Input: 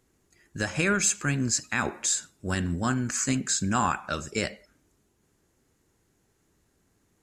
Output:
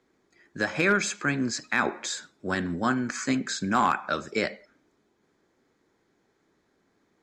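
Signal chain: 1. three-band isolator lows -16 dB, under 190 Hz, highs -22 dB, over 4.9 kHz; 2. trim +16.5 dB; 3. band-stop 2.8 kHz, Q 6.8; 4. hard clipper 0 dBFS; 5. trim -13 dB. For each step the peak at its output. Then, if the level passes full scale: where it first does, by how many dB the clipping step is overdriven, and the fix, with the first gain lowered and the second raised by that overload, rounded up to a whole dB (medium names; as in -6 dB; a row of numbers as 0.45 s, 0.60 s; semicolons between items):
-11.5 dBFS, +5.0 dBFS, +4.5 dBFS, 0.0 dBFS, -13.0 dBFS; step 2, 4.5 dB; step 2 +11.5 dB, step 5 -8 dB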